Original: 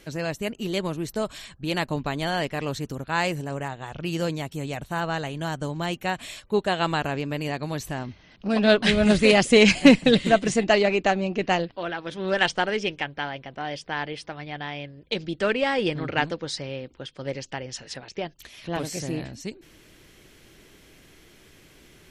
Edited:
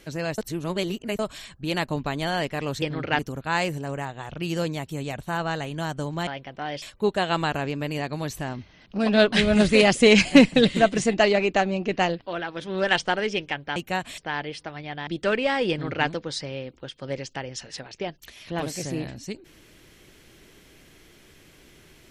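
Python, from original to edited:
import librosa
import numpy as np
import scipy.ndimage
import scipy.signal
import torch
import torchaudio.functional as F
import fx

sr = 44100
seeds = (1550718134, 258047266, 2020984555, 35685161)

y = fx.edit(x, sr, fx.reverse_span(start_s=0.38, length_s=0.81),
    fx.swap(start_s=5.9, length_s=0.42, other_s=13.26, other_length_s=0.55),
    fx.cut(start_s=14.7, length_s=0.54),
    fx.duplicate(start_s=15.87, length_s=0.37, to_s=2.82), tone=tone)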